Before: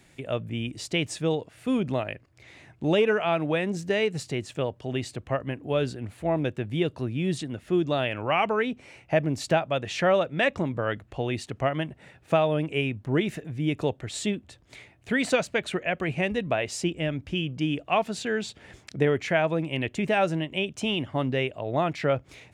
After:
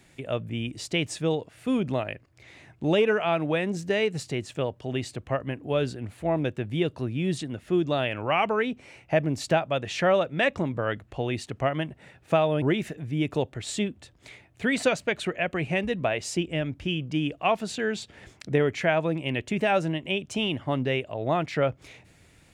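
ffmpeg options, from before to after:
ffmpeg -i in.wav -filter_complex "[0:a]asplit=2[link_01][link_02];[link_01]atrim=end=12.622[link_03];[link_02]atrim=start=13.088[link_04];[link_03][link_04]acrossfade=duration=0.004:curve1=hsin:curve2=hsin" out.wav

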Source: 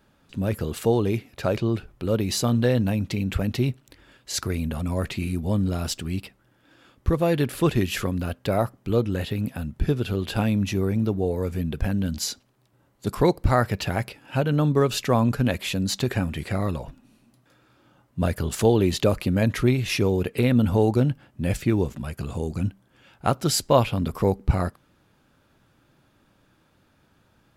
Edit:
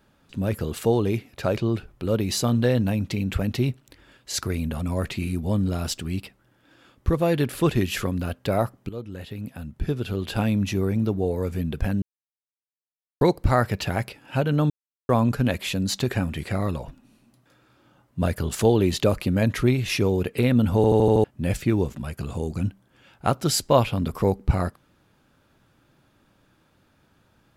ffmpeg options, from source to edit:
ffmpeg -i in.wav -filter_complex "[0:a]asplit=12[link_01][link_02][link_03][link_04][link_05][link_06][link_07][link_08][link_09][link_10][link_11][link_12];[link_01]atrim=end=8.89,asetpts=PTS-STARTPTS,afade=type=out:start_time=8.886:duration=0.004:curve=hsin:silence=0.177828[link_13];[link_02]atrim=start=8.89:end=12.02,asetpts=PTS-STARTPTS,afade=type=in:duration=1.61:silence=0.177828,afade=type=out:start_time=3.126:duration=0.004:curve=hsin[link_14];[link_03]atrim=start=12.02:end=13.21,asetpts=PTS-STARTPTS,volume=0[link_15];[link_04]atrim=start=13.21:end=14.7,asetpts=PTS-STARTPTS,afade=type=in:duration=0.004:curve=hsin,afade=type=out:start_time=1.486:duration=0.004:curve=hsin[link_16];[link_05]atrim=start=14.7:end=15.09,asetpts=PTS-STARTPTS,volume=0[link_17];[link_06]atrim=start=15.09:end=20.842,asetpts=PTS-STARTPTS,afade=type=in:duration=0.004:curve=hsin[link_18];[link_07]atrim=start=20.758:end=20.842[link_19];[link_08]atrim=start=20.758:end=20.842[link_20];[link_09]atrim=start=20.758:end=20.842[link_21];[link_10]atrim=start=20.758:end=20.842[link_22];[link_11]atrim=start=20.758:end=20.842[link_23];[link_12]atrim=start=21.238[link_24];[link_13][link_14][link_15][link_16][link_17][link_18]concat=n=6:v=0:a=1[link_25];[link_25][link_19]acrossfade=duration=0.004:curve1=hsin:curve2=hsin[link_26];[link_26][link_20]acrossfade=duration=0.004:curve1=hsin:curve2=hsin[link_27];[link_27][link_21]acrossfade=duration=0.004:curve1=hsin:curve2=hsin[link_28];[link_28][link_22]acrossfade=duration=0.004:curve1=hsin:curve2=hsin[link_29];[link_29][link_23]acrossfade=duration=0.004:curve1=hsin:curve2=hsin[link_30];[link_30][link_24]acrossfade=duration=0.004:curve1=hsin:curve2=hsin" out.wav

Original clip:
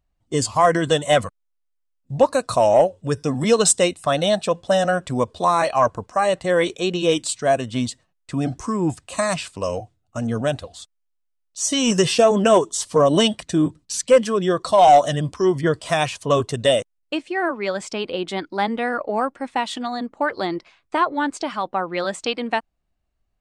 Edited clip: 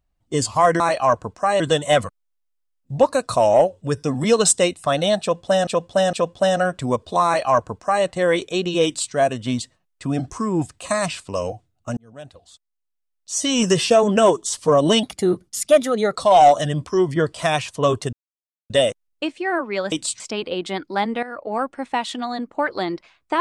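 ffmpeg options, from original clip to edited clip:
ffmpeg -i in.wav -filter_complex "[0:a]asplit=12[link_01][link_02][link_03][link_04][link_05][link_06][link_07][link_08][link_09][link_10][link_11][link_12];[link_01]atrim=end=0.802[link_13];[link_02]atrim=start=5.528:end=6.332[link_14];[link_03]atrim=start=0.798:end=4.872[link_15];[link_04]atrim=start=4.408:end=4.872[link_16];[link_05]atrim=start=4.408:end=10.25,asetpts=PTS-STARTPTS,afade=type=out:start_time=5.838:duration=0.004:curve=hsin[link_17];[link_06]atrim=start=10.25:end=13.314,asetpts=PTS-STARTPTS,afade=type=in:duration=1.57[link_18];[link_07]atrim=start=13.31:end=14.63,asetpts=PTS-STARTPTS,asetrate=51597,aresample=44100[link_19];[link_08]atrim=start=14.626:end=16.6,asetpts=PTS-STARTPTS,afade=type=out:start_time=1.97:duration=0.004:curve=hsin,apad=pad_dur=0.57[link_20];[link_09]atrim=start=16.6:end=17.822,asetpts=PTS-STARTPTS,afade=type=in:duration=0.004:curve=hsin[link_21];[link_10]atrim=start=7.128:end=7.412[link_22];[link_11]atrim=start=17.818:end=18.85,asetpts=PTS-STARTPTS,afade=type=out:start_time=1.028:duration=0.004:curve=hsin:silence=0.199526[link_23];[link_12]atrim=start=18.85,asetpts=PTS-STARTPTS,afade=type=in:duration=0.45:silence=0.199526[link_24];[link_13][link_14]acrossfade=duration=0.004:curve1=hsin:curve2=hsin[link_25];[link_25][link_15]acrossfade=duration=0.004:curve1=hsin:curve2=hsin[link_26];[link_26][link_16]acrossfade=duration=0.004:curve1=hsin:curve2=hsin[link_27];[link_17][link_18]concat=n=2:v=0:a=1[link_28];[link_27][link_28]acrossfade=duration=0.004:curve1=hsin:curve2=hsin[link_29];[link_29][link_19]acrossfade=duration=0.004:curve1=hsin:curve2=hsin[link_30];[link_20][link_21]concat=n=2:v=0:a=1[link_31];[link_30][link_31]acrossfade=duration=0.004:curve1=hsin:curve2=hsin[link_32];[link_32][link_22]acrossfade=duration=0.004:curve1=hsin:curve2=hsin[link_33];[link_23][link_24]concat=n=2:v=0:a=1[link_34];[link_33][link_34]acrossfade=duration=0.004:curve1=hsin:curve2=hsin" out.wav

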